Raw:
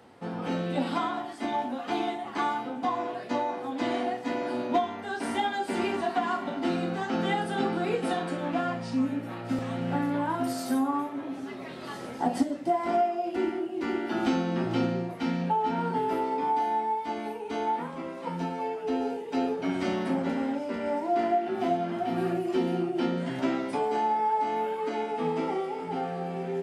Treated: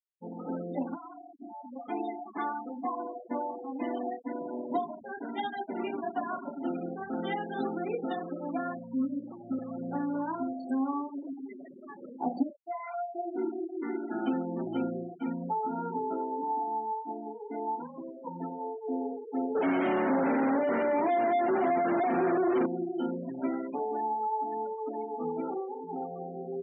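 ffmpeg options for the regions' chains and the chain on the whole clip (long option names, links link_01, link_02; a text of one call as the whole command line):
ffmpeg -i in.wav -filter_complex "[0:a]asettb=1/sr,asplit=3[link_01][link_02][link_03];[link_01]atrim=end=0.954[link_04];[link_02]atrim=start=0.95:end=1.76,asetpts=PTS-STARTPTS,afade=type=in:duration=0.004:curve=qsin,afade=type=out:start_time=0.806:duration=0.004:curve=qsin,highpass=frequency=87:width=0.5412,highpass=frequency=87:width=1.3066,acompressor=threshold=-38dB:ratio=3:attack=3.2:release=140:knee=1:detection=peak[link_05];[link_03]atrim=start=1.756[link_06];[link_04][link_05]acrossfade=duration=0.004:curve1=hsin:curve2=qsin[link_07];[link_07][link_06]acrossfade=duration=0.004:curve1=qsin:curve2=hsin,asettb=1/sr,asplit=3[link_08][link_09][link_10];[link_08]atrim=end=4.194[link_11];[link_09]atrim=start=4.19:end=7.24,asetpts=PTS-STARTPTS,afade=type=in:duration=0.004:curve=qsin,afade=type=out:start_time=3.046:duration=0.004:curve=qsin,asplit=7[link_12][link_13][link_14][link_15][link_16][link_17][link_18];[link_13]adelay=144,afreqshift=-82,volume=-13dB[link_19];[link_14]adelay=288,afreqshift=-164,volume=-18dB[link_20];[link_15]adelay=432,afreqshift=-246,volume=-23.1dB[link_21];[link_16]adelay=576,afreqshift=-328,volume=-28.1dB[link_22];[link_17]adelay=720,afreqshift=-410,volume=-33.1dB[link_23];[link_18]adelay=864,afreqshift=-492,volume=-38.2dB[link_24];[link_12][link_19][link_20][link_21][link_22][link_23][link_24]amix=inputs=7:normalize=0,atrim=end_sample=134505,aeval=exprs='sgn(val(0))*max(abs(val(0))-0.00562,0)':channel_layout=same[link_25];[link_10]atrim=start=7.236[link_26];[link_11][link_25]acrossfade=duration=0.004:curve1=hsin:curve2=qsin[link_27];[link_27][link_26]acrossfade=duration=0.004:curve1=qsin:curve2=hsin,asettb=1/sr,asplit=3[link_28][link_29][link_30];[link_28]atrim=end=12.504[link_31];[link_29]atrim=start=12.5:end=13.15,asetpts=PTS-STARTPTS,afade=type=in:duration=0.004:curve=qsin,afade=type=out:start_time=0.646:duration=0.004:curve=qsin,highpass=940,aemphasis=mode=production:type=75kf,acrusher=bits=5:mode=log:mix=0:aa=0.000001[link_32];[link_30]atrim=start=13.146[link_33];[link_31][link_32]acrossfade=duration=0.004:curve1=hsin:curve2=qsin[link_34];[link_34][link_33]acrossfade=duration=0.004:curve1=qsin:curve2=hsin,asettb=1/sr,asplit=3[link_35][link_36][link_37];[link_35]atrim=end=19.554[link_38];[link_36]atrim=start=19.55:end=22.66,asetpts=PTS-STARTPTS,afade=type=in:duration=0.004:curve=qsin,afade=type=out:start_time=3.106:duration=0.004:curve=qsin,asplit=2[link_39][link_40];[link_40]highpass=frequency=720:poles=1,volume=34dB,asoftclip=type=tanh:threshold=-15dB[link_41];[link_39][link_41]amix=inputs=2:normalize=0,lowpass=frequency=1200:poles=1,volume=-6dB,aecho=1:1:994:0.133,atrim=end_sample=137151[link_42];[link_37]atrim=start=22.656[link_43];[link_38][link_42]acrossfade=duration=0.004:curve1=hsin:curve2=qsin[link_44];[link_44][link_43]acrossfade=duration=0.004:curve1=qsin:curve2=hsin,afftfilt=real='re*gte(hypot(re,im),0.0447)':imag='im*gte(hypot(re,im),0.0447)':win_size=1024:overlap=0.75,highpass=210,equalizer=frequency=270:width_type=o:width=0.77:gain=3.5,volume=-5dB" out.wav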